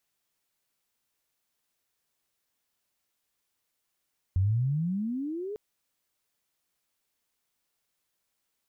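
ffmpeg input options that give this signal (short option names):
-f lavfi -i "aevalsrc='pow(10,(-21-12*t/1.2)/20)*sin(2*PI*88.7*1.2/(27.5*log(2)/12)*(exp(27.5*log(2)/12*t/1.2)-1))':d=1.2:s=44100"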